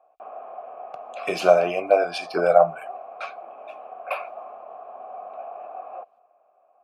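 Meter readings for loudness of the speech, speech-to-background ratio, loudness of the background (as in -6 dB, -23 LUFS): -21.5 LUFS, 17.5 dB, -39.0 LUFS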